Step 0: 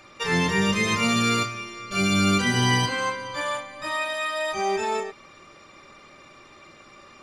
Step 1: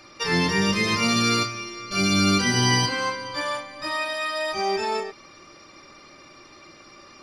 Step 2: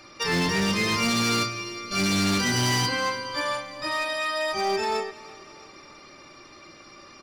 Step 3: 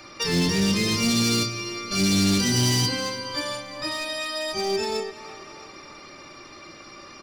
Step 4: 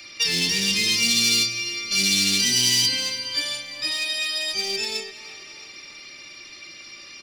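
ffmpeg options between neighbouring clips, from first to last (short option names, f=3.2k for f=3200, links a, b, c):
-af "superequalizer=6b=1.58:14b=2.51:15b=0.631"
-af "asoftclip=type=hard:threshold=-20.5dB,aecho=1:1:335|670|1005|1340:0.0891|0.0463|0.0241|0.0125"
-filter_complex "[0:a]acrossover=split=480|3000[a][b][c];[b]acompressor=threshold=-39dB:ratio=6[d];[a][d][c]amix=inputs=3:normalize=0,volume=4dB"
-filter_complex "[0:a]highshelf=f=1.7k:t=q:w=1.5:g=12.5,acrossover=split=140|1100|3800[a][b][c][d];[a]asoftclip=type=tanh:threshold=-37.5dB[e];[e][b][c][d]amix=inputs=4:normalize=0,volume=-8dB"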